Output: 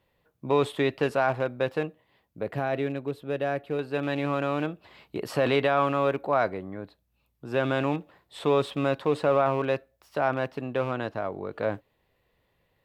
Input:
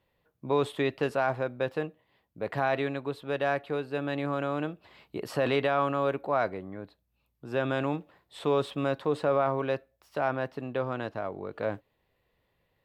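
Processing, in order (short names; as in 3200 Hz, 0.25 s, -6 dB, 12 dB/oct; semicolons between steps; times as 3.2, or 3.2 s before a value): rattling part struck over -33 dBFS, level -36 dBFS; 2.43–3.79 ten-band EQ 1000 Hz -8 dB, 2000 Hz -4 dB, 4000 Hz -6 dB, 8000 Hz -4 dB; gain +3 dB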